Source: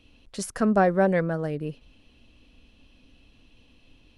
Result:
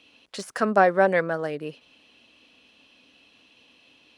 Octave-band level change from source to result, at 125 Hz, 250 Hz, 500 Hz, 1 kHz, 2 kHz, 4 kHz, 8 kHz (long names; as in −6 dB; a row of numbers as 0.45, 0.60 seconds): −7.0 dB, −5.0 dB, +2.0 dB, +4.0 dB, +5.5 dB, +4.0 dB, can't be measured